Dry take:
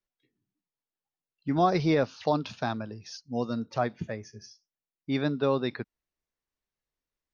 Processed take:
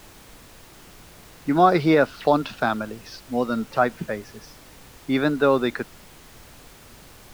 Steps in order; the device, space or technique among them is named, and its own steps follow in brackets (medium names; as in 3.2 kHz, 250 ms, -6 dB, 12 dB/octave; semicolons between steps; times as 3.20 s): horn gramophone (band-pass 190–3900 Hz; peaking EQ 1.4 kHz +8 dB 0.26 oct; wow and flutter; pink noise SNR 22 dB); trim +7.5 dB